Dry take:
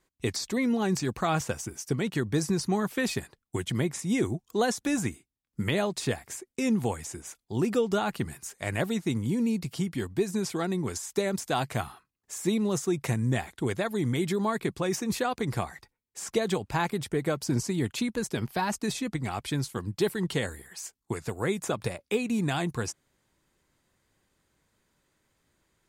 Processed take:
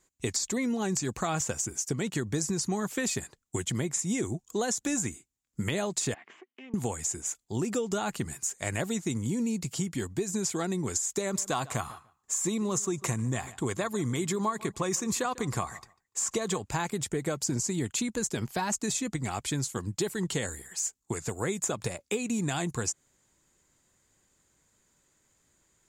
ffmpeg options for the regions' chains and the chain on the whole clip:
ffmpeg -i in.wav -filter_complex "[0:a]asettb=1/sr,asplit=3[link_01][link_02][link_03];[link_01]atrim=end=6.144[link_04];[link_02]atrim=start=6.14:end=6.74,asetpts=PTS-STARTPTS,afade=type=in:duration=0.004:curve=qsin,afade=type=out:start_time=0.596:duration=0.004:curve=qsin,acompressor=threshold=-39dB:ratio=16:attack=3.2:release=140:knee=1:detection=peak,aeval=exprs='(tanh(112*val(0)+0.6)-tanh(0.6))/112':channel_layout=same,highpass=frequency=220:width=0.5412,highpass=frequency=220:width=1.3066,equalizer=frequency=540:width_type=q:width=4:gain=-4,equalizer=frequency=1100:width_type=q:width=4:gain=5,equalizer=frequency=2000:width_type=q:width=4:gain=6,equalizer=frequency=3000:width_type=q:width=4:gain=9,lowpass=frequency=3100:width=0.5412,lowpass=frequency=3100:width=1.3066[link_05];[link_03]atrim=start=6.736[link_06];[link_04][link_05]acrossfade=duration=0.004:curve1=hsin:curve2=qsin[link_07];[link_07][link_06]acrossfade=duration=0.004:curve1=qsin:curve2=hsin,asettb=1/sr,asplit=3[link_08][link_09][link_10];[link_08]atrim=end=11.214[link_11];[link_09]atrim=start=11.21:end=16.64,asetpts=PTS-STARTPTS,afade=type=in:duration=0.004:curve=qsin,afade=type=out:start_time=5.426:duration=0.004:curve=qsin,equalizer=frequency=1100:width_type=o:width=0.34:gain=9,asplit=2[link_12][link_13];[link_13]adelay=146,lowpass=frequency=4000:poles=1,volume=-21dB,asplit=2[link_14][link_15];[link_15]adelay=146,lowpass=frequency=4000:poles=1,volume=0.17[link_16];[link_12][link_14][link_16]amix=inputs=3:normalize=0,atrim=end_sample=239463[link_17];[link_10]atrim=start=16.636[link_18];[link_11][link_17]acrossfade=duration=0.004:curve1=hsin:curve2=qsin[link_19];[link_19][link_18]acrossfade=duration=0.004:curve1=qsin:curve2=hsin,equalizer=frequency=7100:width_type=o:width=0.44:gain=14,acompressor=threshold=-26dB:ratio=6" out.wav

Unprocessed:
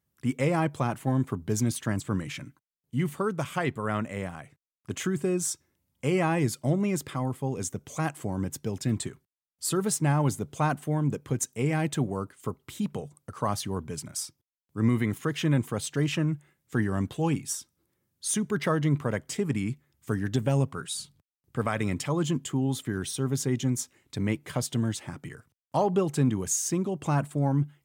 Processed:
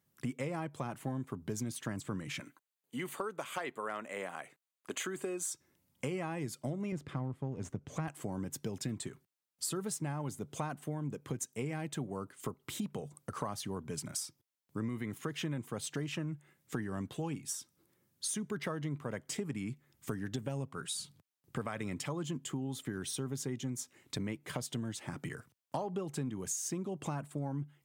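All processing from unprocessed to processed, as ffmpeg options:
ffmpeg -i in.wav -filter_complex "[0:a]asettb=1/sr,asplit=3[link_01][link_02][link_03];[link_01]atrim=end=2.404[link_04];[link_02]atrim=start=2.4:end=5.52,asetpts=PTS-STARTPTS,afade=type=in:duration=0.004:curve=qsin,afade=type=out:start_time=3.116:duration=0.004:curve=qsin,highpass=400,bandreject=frequency=5400:width=5.9,volume=19dB,asoftclip=hard,volume=-19dB[link_05];[link_03]atrim=start=5.516[link_06];[link_04][link_05]acrossfade=duration=0.004:curve1=hsin:curve2=qsin[link_07];[link_07][link_06]acrossfade=duration=0.004:curve1=qsin:curve2=hsin,asettb=1/sr,asplit=3[link_08][link_09][link_10];[link_08]atrim=end=6.924[link_11];[link_09]atrim=start=6.92:end=8.08,asetpts=PTS-STARTPTS,afade=type=in:duration=0.004:curve=qsin,afade=type=out:start_time=1.156:duration=0.004:curve=qsin,aeval=exprs='if(lt(val(0),0),0.447*val(0),val(0))':channel_layout=same,aemphasis=mode=reproduction:type=bsi[link_12];[link_10]atrim=start=8.076[link_13];[link_11][link_12]acrossfade=duration=0.004:curve1=hsin:curve2=qsin[link_14];[link_14][link_13]acrossfade=duration=0.004:curve1=qsin:curve2=hsin,highpass=110,acompressor=threshold=-39dB:ratio=5,volume=3dB" out.wav

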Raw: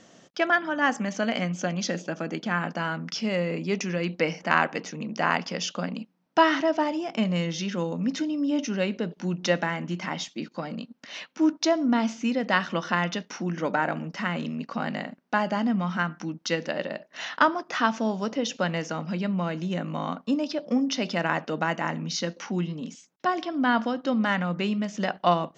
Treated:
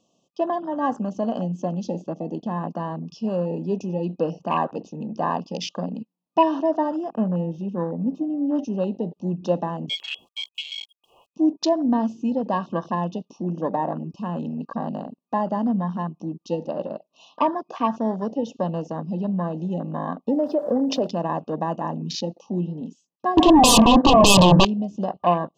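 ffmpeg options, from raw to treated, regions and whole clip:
ffmpeg -i in.wav -filter_complex "[0:a]asettb=1/sr,asplit=3[link_01][link_02][link_03];[link_01]atrim=end=7.094[link_04];[link_02]atrim=start=7.09:end=8.55,asetpts=PTS-STARTPTS,afade=type=in:duration=0.004:curve=qsin,afade=type=out:start_time=1.456:duration=0.004:curve=qsin,aeval=exprs='sgn(val(0))*max(abs(val(0))-0.00224,0)':channel_layout=same,highshelf=frequency=2600:width_type=q:width=1.5:gain=-12[link_05];[link_03]atrim=start=8.546[link_06];[link_04][link_05]acrossfade=duration=0.004:curve1=hsin:curve2=qsin[link_07];[link_07][link_06]acrossfade=duration=0.004:curve1=qsin:curve2=hsin,asettb=1/sr,asplit=3[link_08][link_09][link_10];[link_08]atrim=end=9.894[link_11];[link_09]atrim=start=9.89:end=11.34,asetpts=PTS-STARTPTS,afade=type=in:duration=0.004:curve=qsin,afade=type=out:start_time=1.446:duration=0.004:curve=qsin,lowpass=frequency=3000:width_type=q:width=0.5098,lowpass=frequency=3000:width_type=q:width=0.6013,lowpass=frequency=3000:width_type=q:width=0.9,lowpass=frequency=3000:width_type=q:width=2.563,afreqshift=-3500,aeval=exprs='val(0)*gte(abs(val(0)),0.00299)':channel_layout=same[link_12];[link_10]atrim=start=11.336[link_13];[link_11][link_12]acrossfade=duration=0.004:curve1=hsin:curve2=qsin[link_14];[link_14][link_13]acrossfade=duration=0.004:curve1=qsin:curve2=hsin,asettb=1/sr,asplit=3[link_15][link_16][link_17];[link_15]atrim=end=20.284[link_18];[link_16]atrim=start=20.28:end=21.07,asetpts=PTS-STARTPTS,afade=type=in:duration=0.004:curve=qsin,afade=type=out:start_time=0.786:duration=0.004:curve=qsin,equalizer=frequency=540:width_type=o:width=1.7:gain=15,acompressor=threshold=-21dB:ratio=4:attack=3.2:release=140:knee=1:detection=peak,aeval=exprs='val(0)*gte(abs(val(0)),0.00596)':channel_layout=same[link_19];[link_17]atrim=start=21.066[link_20];[link_18][link_19]acrossfade=duration=0.004:curve1=hsin:curve2=qsin[link_21];[link_21][link_20]acrossfade=duration=0.004:curve1=qsin:curve2=hsin,asettb=1/sr,asplit=3[link_22][link_23][link_24];[link_22]atrim=end=23.374[link_25];[link_23]atrim=start=23.37:end=24.65,asetpts=PTS-STARTPTS,afade=type=in:duration=0.004:curve=qsin,afade=type=out:start_time=1.276:duration=0.004:curve=qsin,lowpass=2300,aeval=exprs='0.282*sin(PI/2*7.94*val(0)/0.282)':channel_layout=same[link_26];[link_24]atrim=start=24.646[link_27];[link_25][link_26]acrossfade=duration=0.004:curve1=hsin:curve2=qsin[link_28];[link_28][link_27]acrossfade=duration=0.004:curve1=qsin:curve2=hsin,afftfilt=real='re*(1-between(b*sr/4096,1200,2500))':imag='im*(1-between(b*sr/4096,1200,2500))':win_size=4096:overlap=0.75,afwtdn=0.0224,volume=2.5dB" out.wav

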